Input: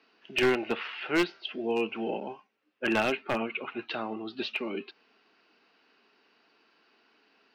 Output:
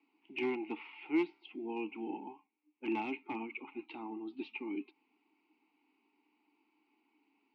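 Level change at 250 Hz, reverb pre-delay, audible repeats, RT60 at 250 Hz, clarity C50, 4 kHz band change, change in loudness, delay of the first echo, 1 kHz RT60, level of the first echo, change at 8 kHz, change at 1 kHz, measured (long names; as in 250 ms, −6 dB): −5.0 dB, no reverb audible, no echo audible, no reverb audible, no reverb audible, −17.0 dB, −9.0 dB, no echo audible, no reverb audible, no echo audible, below −25 dB, −8.5 dB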